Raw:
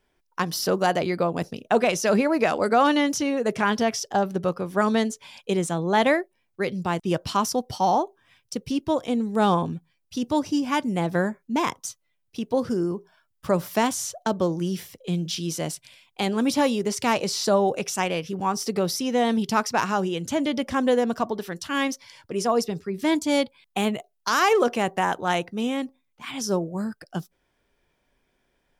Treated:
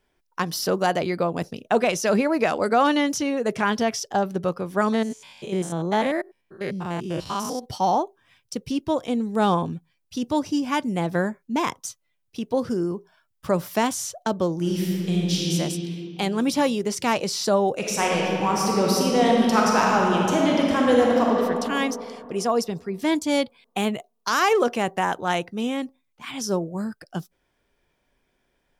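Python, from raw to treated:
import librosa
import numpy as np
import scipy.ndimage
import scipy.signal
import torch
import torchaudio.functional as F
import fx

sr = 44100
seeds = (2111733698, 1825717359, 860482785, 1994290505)

y = fx.spec_steps(x, sr, hold_ms=100, at=(4.92, 7.64), fade=0.02)
y = fx.reverb_throw(y, sr, start_s=14.55, length_s=0.97, rt60_s=2.8, drr_db=-4.5)
y = fx.reverb_throw(y, sr, start_s=17.77, length_s=3.61, rt60_s=2.7, drr_db=-3.0)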